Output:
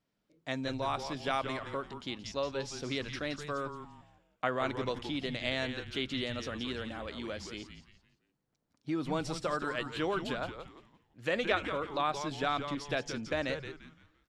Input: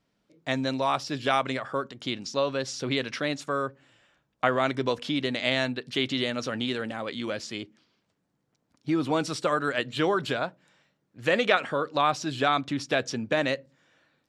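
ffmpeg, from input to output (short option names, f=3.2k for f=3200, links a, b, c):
-filter_complex "[0:a]asplit=5[a][b][c][d][e];[b]adelay=172,afreqshift=-150,volume=-8.5dB[f];[c]adelay=344,afreqshift=-300,volume=-17.9dB[g];[d]adelay=516,afreqshift=-450,volume=-27.2dB[h];[e]adelay=688,afreqshift=-600,volume=-36.6dB[i];[a][f][g][h][i]amix=inputs=5:normalize=0,volume=-8dB"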